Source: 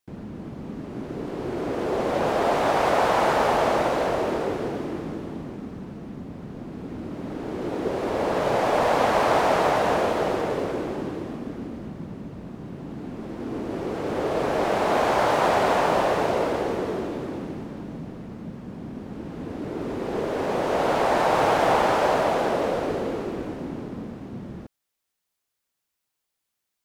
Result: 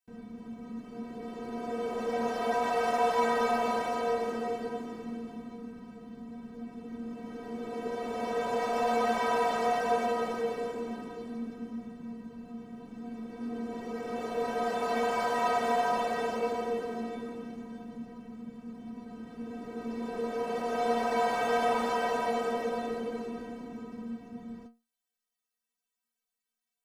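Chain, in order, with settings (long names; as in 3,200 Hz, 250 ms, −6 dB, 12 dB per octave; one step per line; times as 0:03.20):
stiff-string resonator 230 Hz, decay 0.27 s, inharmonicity 0.008
level +5 dB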